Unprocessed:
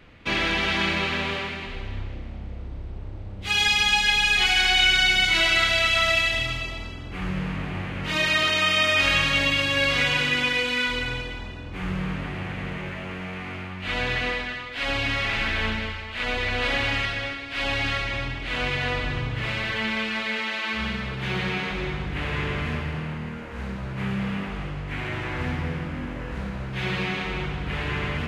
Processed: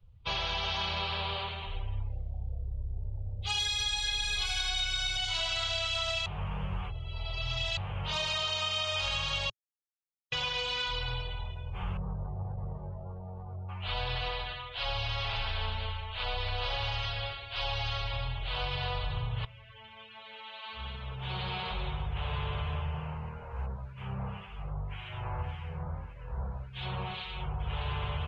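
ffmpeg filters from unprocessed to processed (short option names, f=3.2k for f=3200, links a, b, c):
-filter_complex "[0:a]asettb=1/sr,asplit=3[a][b][c];[a]atrim=end=3.594[d];[b]atrim=start=3.59:end=5.17,asetpts=PTS-STARTPTS,afade=t=in:d=0.004:c=qsin,afade=t=out:st=1.576:d=0.004:c=qsin,aecho=1:1:1.9:0.82,atrim=end_sample=69678[e];[c]atrim=start=5.166[f];[d][e]acrossfade=d=0.004:c1=hsin:c2=qsin[g];[g][f]acrossfade=d=0.004:c1=qsin:c2=hsin,asettb=1/sr,asplit=3[h][i][j];[h]atrim=end=11.974[k];[i]atrim=start=11.97:end=13.69,asetpts=PTS-STARTPTS,afade=t=in:d=0.004:c=qsin,afade=t=out:st=1.716:d=0.004:c=qsin,adynamicsmooth=sensitivity=1:basefreq=530[l];[j]atrim=start=13.686[m];[k][l]acrossfade=d=0.004:c1=hsin:c2=qsin[n];[n][m]acrossfade=d=0.004:c1=qsin:c2=hsin,asettb=1/sr,asplit=3[o][p][q];[o]atrim=end=23.664[r];[p]atrim=start=23.66:end=27.6,asetpts=PTS-STARTPTS,afade=t=in:d=0.004:c=qsin,afade=t=out:st=3.936:d=0.004:c=qsin,acrossover=split=1600[s][t];[s]aeval=exprs='val(0)*(1-0.7/2+0.7/2*cos(2*PI*1.8*n/s))':c=same[u];[t]aeval=exprs='val(0)*(1-0.7/2-0.7/2*cos(2*PI*1.8*n/s))':c=same[v];[u][v]amix=inputs=2:normalize=0[w];[q]atrim=start=27.596[x];[r][w]acrossfade=d=0.004:c1=hsin:c2=qsin[y];[y][x]acrossfade=d=0.004:c1=qsin:c2=hsin,asplit=6[z][aa][ab][ac][ad][ae];[z]atrim=end=6.262[af];[aa]atrim=start=6.258:end=7.772,asetpts=PTS-STARTPTS,areverse[ag];[ab]atrim=start=7.768:end=9.5,asetpts=PTS-STARTPTS,afade=t=out:st=1.728:d=0.004:c=hsin[ah];[ac]atrim=start=9.5:end=10.32,asetpts=PTS-STARTPTS,volume=0[ai];[ad]atrim=start=10.32:end=19.45,asetpts=PTS-STARTPTS,afade=t=in:d=0.004:c=hsin,afade=t=out:st=9.126:d=0.004:c=hsin:silence=0.149624[aj];[ae]atrim=start=19.45,asetpts=PTS-STARTPTS,afade=t=in:d=2.26:c=qua:silence=0.149624[ak];[af][ag]acrossfade=d=0.004:c1=hsin:c2=hsin[al];[ah][ai][aj][ak]concat=n=4:v=0:a=1[am];[al][am]acrossfade=d=0.004:c1=hsin:c2=hsin,afftdn=nr=23:nf=-42,firequalizer=gain_entry='entry(110,0);entry(280,-30);entry(400,-9);entry(880,1);entry(1900,-16);entry(3100,-1);entry(10000,1)':delay=0.05:min_phase=1,acompressor=threshold=-29dB:ratio=6"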